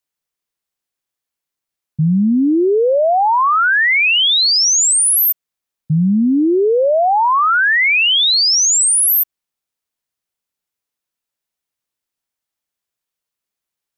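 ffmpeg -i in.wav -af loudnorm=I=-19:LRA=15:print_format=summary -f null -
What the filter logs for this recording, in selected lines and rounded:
Input Integrated:    -11.9 LUFS
Input True Peak:     -10.1 dBTP
Input LRA:             7.1 LU
Input Threshold:     -22.0 LUFS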